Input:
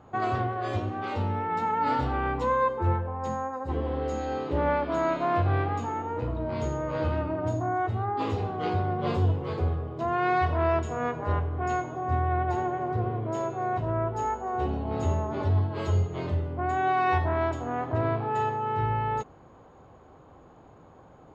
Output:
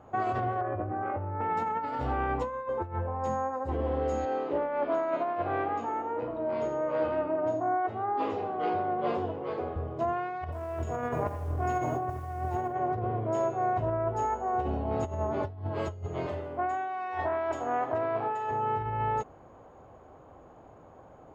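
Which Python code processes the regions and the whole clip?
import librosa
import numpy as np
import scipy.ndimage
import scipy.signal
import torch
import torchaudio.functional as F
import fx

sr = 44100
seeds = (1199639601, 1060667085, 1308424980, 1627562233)

y = fx.chain(x, sr, fx.lowpass(hz=1800.0, slope=24),
    fx.notch_comb(f0_hz=230.0),
    fx.env_flatten(amount_pct=100), at=(0.61, 1.41))
y = fx.chain(y, sr, fx.highpass(hz=240.0, slope=12),
    fx.air_absorb(metres=110.0), at=(4.25, 9.76))
y = fx.chain(y, sr, fx.low_shelf(hz=180.0, db=6.0),
    fx.over_compress(threshold_db=-28.0, ratio=-0.5),
    fx.echo_crushed(ms=82, feedback_pct=55, bits=8, wet_db=-12.0), at=(10.44, 12.75))
y = fx.chain(y, sr, fx.highpass(hz=490.0, slope=6),
    fx.over_compress(threshold_db=-32.0, ratio=-1.0), at=(16.26, 18.51))
y = fx.over_compress(y, sr, threshold_db=-28.0, ratio=-0.5)
y = fx.graphic_eq_15(y, sr, hz=(160, 630, 4000), db=(-3, 5, -6))
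y = y * librosa.db_to_amplitude(-2.5)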